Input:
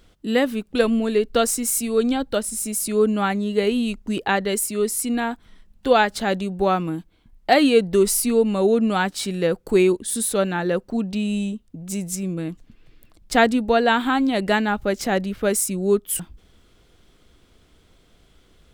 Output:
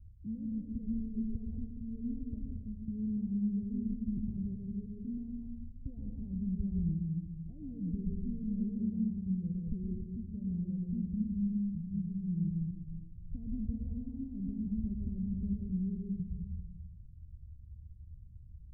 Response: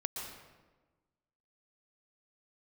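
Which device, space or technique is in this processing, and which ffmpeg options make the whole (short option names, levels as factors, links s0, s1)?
club heard from the street: -filter_complex "[0:a]equalizer=f=81:w=1.3:g=11,alimiter=limit=0.188:level=0:latency=1,lowpass=f=150:w=0.5412,lowpass=f=150:w=1.3066[s0];[1:a]atrim=start_sample=2205[s1];[s0][s1]afir=irnorm=-1:irlink=0"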